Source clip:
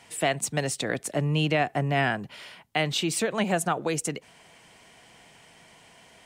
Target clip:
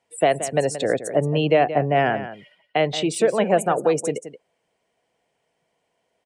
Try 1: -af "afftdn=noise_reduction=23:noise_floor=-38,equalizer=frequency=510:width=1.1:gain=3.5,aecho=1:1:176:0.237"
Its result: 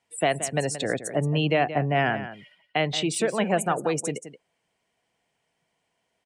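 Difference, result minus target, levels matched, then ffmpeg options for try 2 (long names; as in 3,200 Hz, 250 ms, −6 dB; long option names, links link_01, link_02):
500 Hz band −2.5 dB
-af "afftdn=noise_reduction=23:noise_floor=-38,equalizer=frequency=510:width=1.1:gain=11.5,aecho=1:1:176:0.237"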